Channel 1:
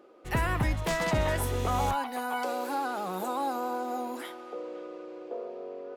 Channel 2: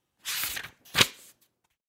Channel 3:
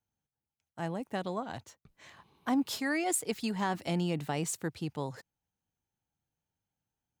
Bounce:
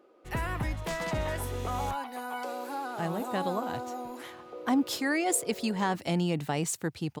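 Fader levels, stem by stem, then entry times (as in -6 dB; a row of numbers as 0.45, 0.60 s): -4.5 dB, off, +3.0 dB; 0.00 s, off, 2.20 s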